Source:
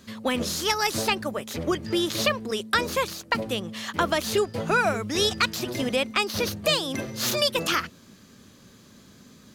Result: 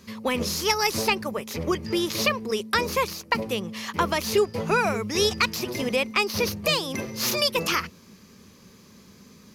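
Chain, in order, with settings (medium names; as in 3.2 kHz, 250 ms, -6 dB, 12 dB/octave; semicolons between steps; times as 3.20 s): rippled EQ curve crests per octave 0.83, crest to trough 6 dB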